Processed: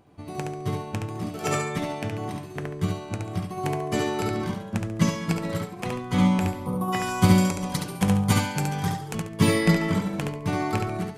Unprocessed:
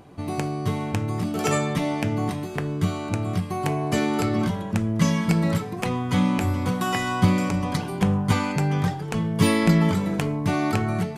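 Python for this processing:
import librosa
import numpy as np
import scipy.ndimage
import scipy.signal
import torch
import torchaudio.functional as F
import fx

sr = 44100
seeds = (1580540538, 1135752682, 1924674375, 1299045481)

y = fx.spec_box(x, sr, start_s=6.6, length_s=0.32, low_hz=1300.0, high_hz=8800.0, gain_db=-18)
y = fx.high_shelf(y, sr, hz=5600.0, db=11.5, at=(7.02, 9.15))
y = fx.echo_feedback(y, sr, ms=70, feedback_pct=35, wet_db=-3.5)
y = fx.upward_expand(y, sr, threshold_db=-33.0, expansion=1.5)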